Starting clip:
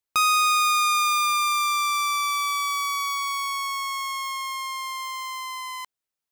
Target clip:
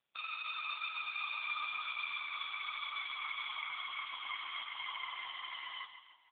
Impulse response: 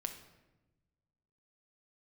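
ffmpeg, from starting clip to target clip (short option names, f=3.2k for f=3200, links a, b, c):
-filter_complex "[0:a]aderivative,alimiter=limit=-23dB:level=0:latency=1:release=310,afftfilt=real='hypot(re,im)*cos(2*PI*random(0))':imag='hypot(re,im)*sin(2*PI*random(1))':win_size=512:overlap=0.75,asplit=2[a][b];[b]aecho=0:1:149|298|447|596|745:0.282|0.138|0.0677|0.0332|0.0162[c];[a][c]amix=inputs=2:normalize=0,volume=15.5dB" -ar 8000 -c:a libopencore_amrnb -b:a 5150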